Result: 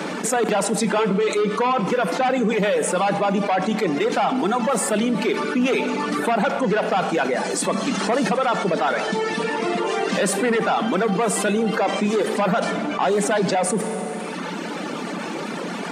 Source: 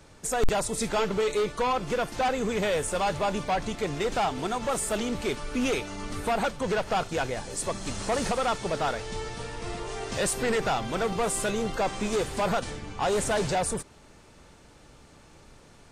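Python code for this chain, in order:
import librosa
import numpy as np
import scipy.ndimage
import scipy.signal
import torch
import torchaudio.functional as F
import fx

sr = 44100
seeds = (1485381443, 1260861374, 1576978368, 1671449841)

y = fx.octave_divider(x, sr, octaves=2, level_db=-3.0)
y = fx.dereverb_blind(y, sr, rt60_s=1.4)
y = scipy.signal.sosfilt(scipy.signal.cheby1(5, 1.0, 180.0, 'highpass', fs=sr, output='sos'), y)
y = fx.bass_treble(y, sr, bass_db=4, treble_db=-11)
y = fx.rev_schroeder(y, sr, rt60_s=1.4, comb_ms=28, drr_db=14.0)
y = fx.env_flatten(y, sr, amount_pct=70)
y = F.gain(torch.from_numpy(y), 5.5).numpy()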